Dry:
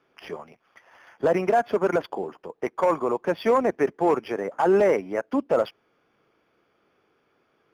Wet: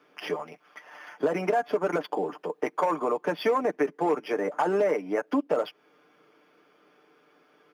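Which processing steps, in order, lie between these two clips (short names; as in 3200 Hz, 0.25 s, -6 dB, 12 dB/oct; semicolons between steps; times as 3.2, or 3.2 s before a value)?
comb 6.7 ms, depth 57%; compressor 3:1, threshold -30 dBFS, peak gain reduction 12.5 dB; HPF 180 Hz 24 dB/oct; gain +5 dB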